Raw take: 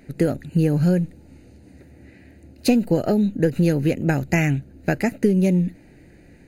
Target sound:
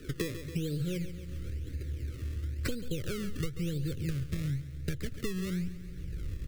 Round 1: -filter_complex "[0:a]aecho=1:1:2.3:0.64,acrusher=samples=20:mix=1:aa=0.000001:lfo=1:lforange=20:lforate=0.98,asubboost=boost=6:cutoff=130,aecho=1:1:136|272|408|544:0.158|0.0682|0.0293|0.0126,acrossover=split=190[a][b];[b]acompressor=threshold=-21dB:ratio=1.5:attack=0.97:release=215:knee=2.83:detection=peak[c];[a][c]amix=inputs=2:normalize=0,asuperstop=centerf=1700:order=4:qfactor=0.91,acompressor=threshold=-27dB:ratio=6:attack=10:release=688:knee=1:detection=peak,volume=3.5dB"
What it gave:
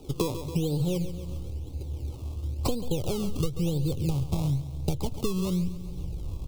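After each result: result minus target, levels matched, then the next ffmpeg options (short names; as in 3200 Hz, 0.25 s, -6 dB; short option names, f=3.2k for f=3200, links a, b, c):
2000 Hz band -11.5 dB; compressor: peak gain reduction -6 dB
-filter_complex "[0:a]aecho=1:1:2.3:0.64,acrusher=samples=20:mix=1:aa=0.000001:lfo=1:lforange=20:lforate=0.98,asubboost=boost=6:cutoff=130,aecho=1:1:136|272|408|544:0.158|0.0682|0.0293|0.0126,acrossover=split=190[a][b];[b]acompressor=threshold=-21dB:ratio=1.5:attack=0.97:release=215:knee=2.83:detection=peak[c];[a][c]amix=inputs=2:normalize=0,asuperstop=centerf=850:order=4:qfactor=0.91,acompressor=threshold=-27dB:ratio=6:attack=10:release=688:knee=1:detection=peak,volume=3.5dB"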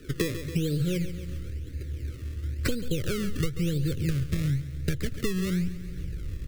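compressor: peak gain reduction -6 dB
-filter_complex "[0:a]aecho=1:1:2.3:0.64,acrusher=samples=20:mix=1:aa=0.000001:lfo=1:lforange=20:lforate=0.98,asubboost=boost=6:cutoff=130,aecho=1:1:136|272|408|544:0.158|0.0682|0.0293|0.0126,acrossover=split=190[a][b];[b]acompressor=threshold=-21dB:ratio=1.5:attack=0.97:release=215:knee=2.83:detection=peak[c];[a][c]amix=inputs=2:normalize=0,asuperstop=centerf=850:order=4:qfactor=0.91,acompressor=threshold=-34.5dB:ratio=6:attack=10:release=688:knee=1:detection=peak,volume=3.5dB"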